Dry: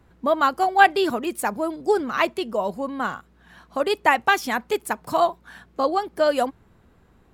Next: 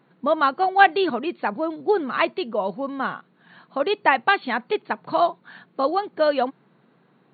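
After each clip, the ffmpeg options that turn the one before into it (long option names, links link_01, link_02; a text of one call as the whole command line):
ffmpeg -i in.wav -af "afftfilt=real='re*between(b*sr/4096,120,4500)':imag='im*between(b*sr/4096,120,4500)':win_size=4096:overlap=0.75" out.wav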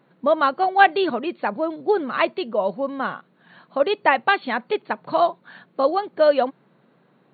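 ffmpeg -i in.wav -af "equalizer=frequency=570:width=5.1:gain=5.5" out.wav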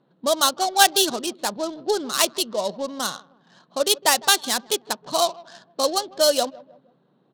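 ffmpeg -i in.wav -filter_complex "[0:a]asplit=2[link_01][link_02];[link_02]adelay=157,lowpass=frequency=1400:poles=1,volume=-20dB,asplit=2[link_03][link_04];[link_04]adelay=157,lowpass=frequency=1400:poles=1,volume=0.44,asplit=2[link_05][link_06];[link_06]adelay=157,lowpass=frequency=1400:poles=1,volume=0.44[link_07];[link_01][link_03][link_05][link_07]amix=inputs=4:normalize=0,adynamicsmooth=sensitivity=6:basefreq=1400,aexciter=amount=9.6:drive=7.4:freq=3400,volume=-3.5dB" out.wav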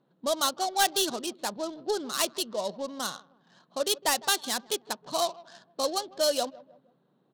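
ffmpeg -i in.wav -af "asoftclip=type=tanh:threshold=-10dB,volume=-6dB" out.wav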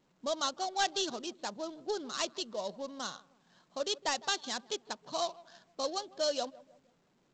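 ffmpeg -i in.wav -af "volume=-6dB" -ar 16000 -c:a pcm_alaw out.wav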